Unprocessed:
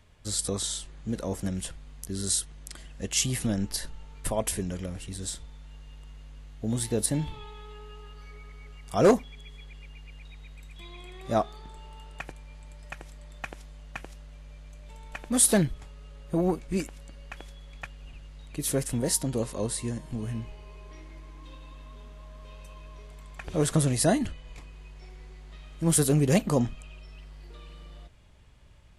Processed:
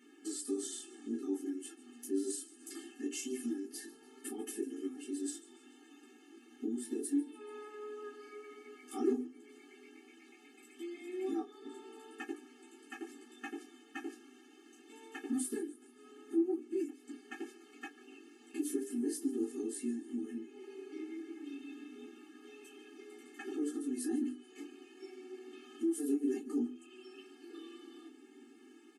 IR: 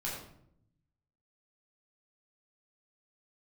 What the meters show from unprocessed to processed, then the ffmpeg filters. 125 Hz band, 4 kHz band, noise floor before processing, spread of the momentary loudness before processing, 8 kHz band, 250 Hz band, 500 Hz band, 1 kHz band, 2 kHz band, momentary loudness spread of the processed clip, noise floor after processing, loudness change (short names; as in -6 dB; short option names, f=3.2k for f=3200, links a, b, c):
under -35 dB, -16.5 dB, -46 dBFS, 24 LU, -15.5 dB, -5.5 dB, -10.5 dB, -16.0 dB, -11.0 dB, 21 LU, -60 dBFS, -12.0 dB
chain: -filter_complex "[0:a]equalizer=f=160:t=o:w=0.67:g=6,equalizer=f=1k:t=o:w=0.67:g=-10,equalizer=f=4k:t=o:w=0.67:g=-8,acompressor=threshold=-42dB:ratio=6,equalizer=f=290:t=o:w=1.6:g=8,asplit=5[a][b][c][d][e];[b]adelay=144,afreqshift=-120,volume=-19dB[f];[c]adelay=288,afreqshift=-240,volume=-24.4dB[g];[d]adelay=432,afreqshift=-360,volume=-29.7dB[h];[e]adelay=576,afreqshift=-480,volume=-35.1dB[i];[a][f][g][h][i]amix=inputs=5:normalize=0[j];[1:a]atrim=start_sample=2205,atrim=end_sample=3528,asetrate=88200,aresample=44100[k];[j][k]afir=irnorm=-1:irlink=0,flanger=delay=5.7:depth=9.5:regen=-46:speed=0.18:shape=triangular,bandreject=f=50:t=h:w=6,bandreject=f=100:t=h:w=6,bandreject=f=150:t=h:w=6,bandreject=f=200:t=h:w=6,bandreject=f=250:t=h:w=6,bandreject=f=300:t=h:w=6,bandreject=f=350:t=h:w=6,bandreject=f=400:t=h:w=6,bandreject=f=450:t=h:w=6,afftfilt=real='re*eq(mod(floor(b*sr/1024/230),2),1)':imag='im*eq(mod(floor(b*sr/1024/230),2),1)':win_size=1024:overlap=0.75,volume=14dB"